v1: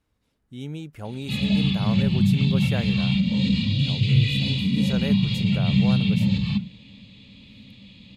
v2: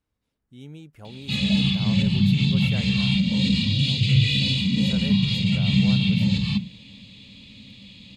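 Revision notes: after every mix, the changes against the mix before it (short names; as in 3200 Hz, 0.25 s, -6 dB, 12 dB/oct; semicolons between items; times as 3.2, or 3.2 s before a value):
speech -7.5 dB; background: add high shelf 4300 Hz +11.5 dB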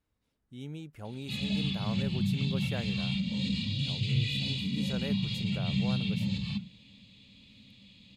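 background -10.5 dB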